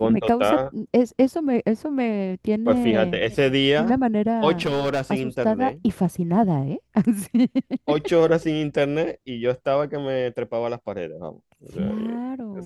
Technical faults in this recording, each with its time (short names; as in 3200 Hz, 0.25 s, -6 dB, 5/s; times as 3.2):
4.61–5.11 clipped -19 dBFS